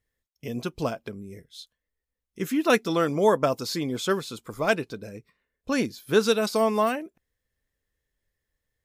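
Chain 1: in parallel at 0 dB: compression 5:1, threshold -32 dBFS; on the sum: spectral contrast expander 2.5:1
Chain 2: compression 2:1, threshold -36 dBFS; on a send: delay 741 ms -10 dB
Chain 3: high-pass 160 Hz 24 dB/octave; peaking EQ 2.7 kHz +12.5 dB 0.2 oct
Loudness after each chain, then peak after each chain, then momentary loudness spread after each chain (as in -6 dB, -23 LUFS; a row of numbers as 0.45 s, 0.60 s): -26.0 LUFS, -35.5 LUFS, -25.0 LUFS; -6.0 dBFS, -19.0 dBFS, -6.0 dBFS; 24 LU, 13 LU, 21 LU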